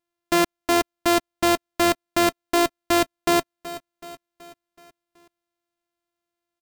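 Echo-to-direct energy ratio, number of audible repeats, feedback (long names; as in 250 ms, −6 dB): −14.0 dB, 4, 53%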